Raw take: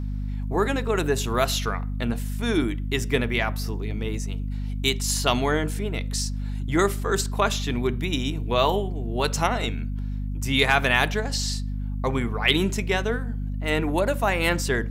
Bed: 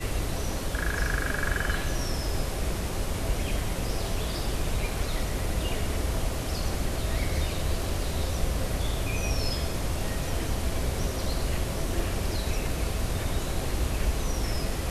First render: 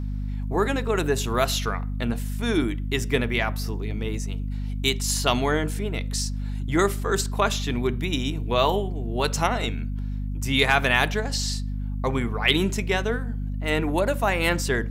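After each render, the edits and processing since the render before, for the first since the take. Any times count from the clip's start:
no processing that can be heard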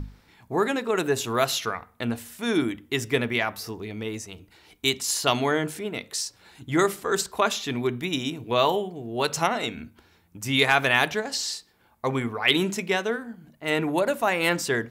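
mains-hum notches 50/100/150/200/250 Hz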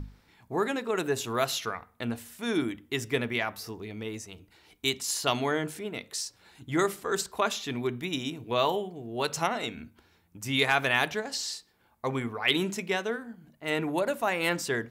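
level −4.5 dB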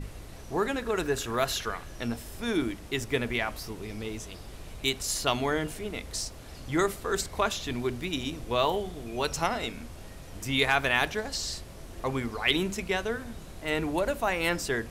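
mix in bed −15 dB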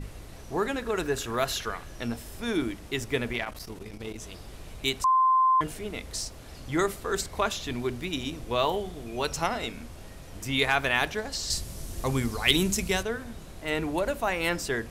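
0:03.33–0:04.22: saturating transformer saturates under 580 Hz
0:05.04–0:05.61: beep over 1,040 Hz −18 dBFS
0:11.50–0:13.03: bass and treble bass +7 dB, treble +12 dB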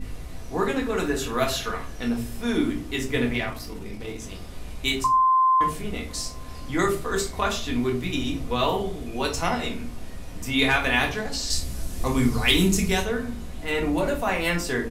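slap from a distant wall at 180 metres, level −29 dB
rectangular room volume 240 cubic metres, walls furnished, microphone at 1.9 metres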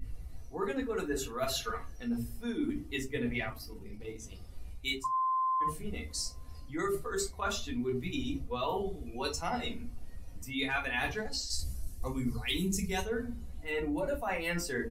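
spectral dynamics exaggerated over time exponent 1.5
reversed playback
downward compressor 6 to 1, threshold −30 dBFS, peak gain reduction 13 dB
reversed playback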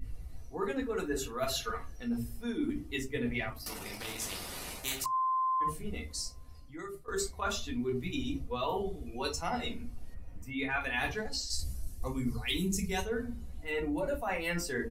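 0:03.66–0:05.06: every bin compressed towards the loudest bin 4 to 1
0:05.97–0:07.08: fade out, to −16 dB
0:10.14–0:10.81: flat-topped bell 6,700 Hz −10 dB 2.4 octaves

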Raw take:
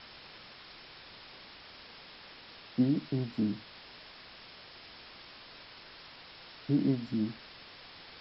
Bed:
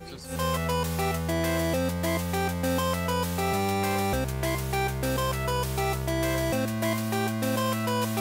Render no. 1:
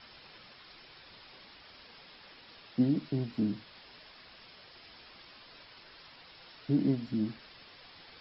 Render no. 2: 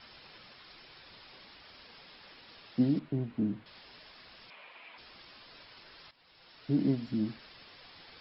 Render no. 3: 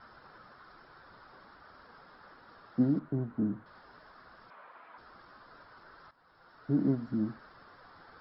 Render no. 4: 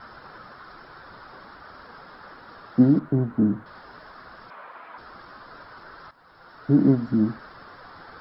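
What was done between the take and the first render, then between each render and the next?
broadband denoise 6 dB, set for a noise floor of −52 dBFS
0:02.99–0:03.66: high-frequency loss of the air 450 metres; 0:04.50–0:04.98: loudspeaker in its box 290–3,300 Hz, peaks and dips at 370 Hz −6 dB, 610 Hz +3 dB, 1,000 Hz +8 dB, 2,400 Hz +10 dB; 0:06.11–0:06.81: fade in, from −15.5 dB
high shelf with overshoot 1,900 Hz −10.5 dB, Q 3
level +10.5 dB

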